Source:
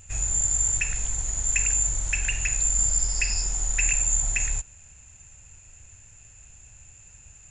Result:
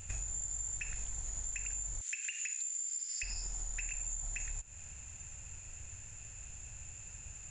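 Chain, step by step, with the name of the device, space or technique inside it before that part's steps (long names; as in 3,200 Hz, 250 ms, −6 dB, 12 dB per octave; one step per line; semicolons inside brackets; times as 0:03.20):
0:02.01–0:03.23: inverse Chebyshev high-pass filter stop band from 410 Hz, stop band 70 dB
serial compression, peaks first (downward compressor, threshold −34 dBFS, peak gain reduction 14.5 dB; downward compressor 2 to 1, threshold −40 dBFS, peak gain reduction 5.5 dB)
level +1 dB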